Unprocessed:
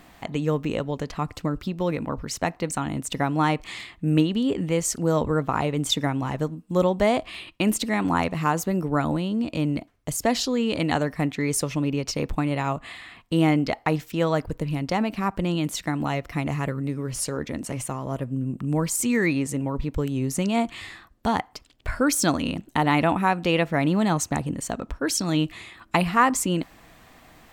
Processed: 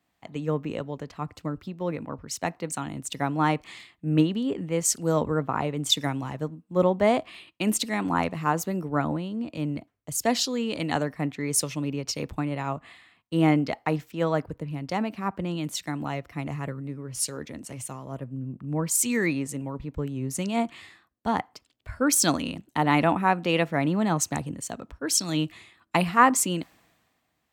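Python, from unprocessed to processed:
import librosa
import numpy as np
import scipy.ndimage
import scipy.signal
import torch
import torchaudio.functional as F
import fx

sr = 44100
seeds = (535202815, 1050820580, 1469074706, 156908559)

y = scipy.signal.sosfilt(scipy.signal.butter(2, 81.0, 'highpass', fs=sr, output='sos'), x)
y = fx.band_widen(y, sr, depth_pct=70)
y = y * librosa.db_to_amplitude(-3.0)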